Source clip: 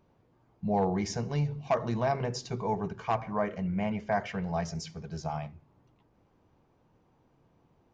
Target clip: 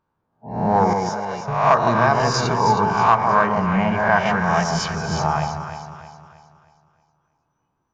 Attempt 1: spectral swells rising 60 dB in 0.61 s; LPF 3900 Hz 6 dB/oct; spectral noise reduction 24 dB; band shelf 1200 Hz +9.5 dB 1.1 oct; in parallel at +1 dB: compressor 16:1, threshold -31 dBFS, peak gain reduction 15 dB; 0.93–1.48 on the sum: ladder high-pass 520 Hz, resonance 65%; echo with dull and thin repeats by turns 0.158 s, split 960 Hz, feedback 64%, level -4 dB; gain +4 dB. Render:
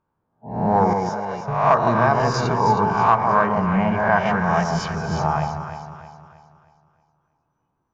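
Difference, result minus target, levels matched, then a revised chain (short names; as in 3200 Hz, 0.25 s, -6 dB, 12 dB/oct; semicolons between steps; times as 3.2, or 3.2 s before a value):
4000 Hz band -5.0 dB
spectral swells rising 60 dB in 0.61 s; LPF 3900 Hz 6 dB/oct; high shelf 2500 Hz +8.5 dB; spectral noise reduction 24 dB; band shelf 1200 Hz +9.5 dB 1.1 oct; in parallel at +1 dB: compressor 16:1, threshold -31 dBFS, peak gain reduction 16.5 dB; 0.93–1.48 on the sum: ladder high-pass 520 Hz, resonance 65%; echo with dull and thin repeats by turns 0.158 s, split 960 Hz, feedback 64%, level -4 dB; gain +4 dB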